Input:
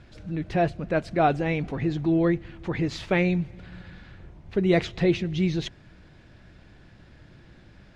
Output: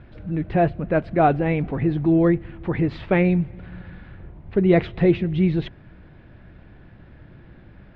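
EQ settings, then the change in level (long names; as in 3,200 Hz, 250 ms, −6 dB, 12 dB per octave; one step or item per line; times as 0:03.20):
high-frequency loss of the air 440 metres
+5.5 dB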